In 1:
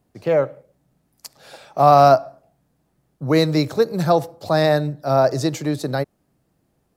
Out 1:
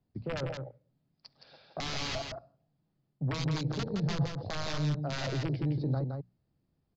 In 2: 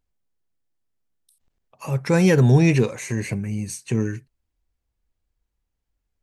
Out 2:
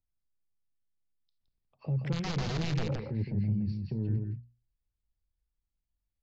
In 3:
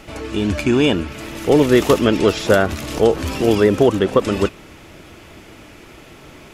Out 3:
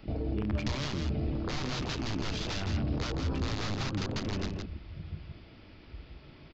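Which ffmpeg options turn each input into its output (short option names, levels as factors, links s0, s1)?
-filter_complex "[0:a]aresample=11025,aeval=exprs='(mod(3.35*val(0)+1,2)-1)/3.35':c=same,aresample=44100,afwtdn=0.0447,bass=f=250:g=9,treble=f=4000:g=8,areverse,acompressor=threshold=0.0708:ratio=4,areverse,alimiter=limit=0.0631:level=0:latency=1:release=41,acrossover=split=180[s0][s1];[s1]acompressor=threshold=0.02:ratio=6[s2];[s0][s2]amix=inputs=2:normalize=0,bandreject=f=60:t=h:w=6,bandreject=f=120:t=h:w=6,bandreject=f=180:t=h:w=6,bandreject=f=240:t=h:w=6,aecho=1:1:167:0.562"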